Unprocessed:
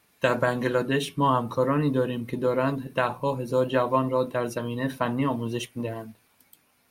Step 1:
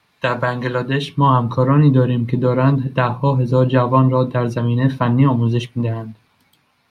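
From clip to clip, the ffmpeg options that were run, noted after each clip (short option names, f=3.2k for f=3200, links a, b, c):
-filter_complex "[0:a]equalizer=f=125:t=o:w=1:g=8,equalizer=f=1k:t=o:w=1:g=7,equalizer=f=2k:t=o:w=1:g=3,equalizer=f=4k:t=o:w=1:g=8,acrossover=split=390|1700|3000[a][b][c][d];[a]dynaudnorm=f=500:g=5:m=11dB[e];[e][b][c][d]amix=inputs=4:normalize=0,highshelf=f=7.6k:g=-12"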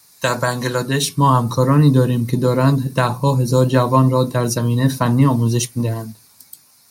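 -af "aexciter=amount=5.5:drive=9.9:freq=4.7k"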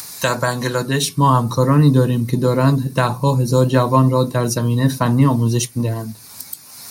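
-af "acompressor=mode=upward:threshold=-19dB:ratio=2.5"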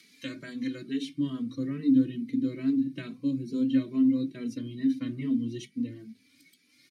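-filter_complex "[0:a]asplit=3[a][b][c];[a]bandpass=f=270:t=q:w=8,volume=0dB[d];[b]bandpass=f=2.29k:t=q:w=8,volume=-6dB[e];[c]bandpass=f=3.01k:t=q:w=8,volume=-9dB[f];[d][e][f]amix=inputs=3:normalize=0,bandreject=f=50:t=h:w=6,bandreject=f=100:t=h:w=6,bandreject=f=150:t=h:w=6,bandreject=f=200:t=h:w=6,bandreject=f=250:t=h:w=6,asplit=2[g][h];[h]adelay=2.7,afreqshift=2.3[i];[g][i]amix=inputs=2:normalize=1"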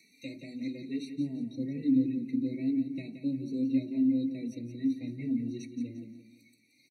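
-filter_complex "[0:a]asplit=2[a][b];[b]aecho=0:1:174|348|522|696:0.335|0.124|0.0459|0.017[c];[a][c]amix=inputs=2:normalize=0,afftfilt=real='re*eq(mod(floor(b*sr/1024/930),2),0)':imag='im*eq(mod(floor(b*sr/1024/930),2),0)':win_size=1024:overlap=0.75,volume=-3.5dB"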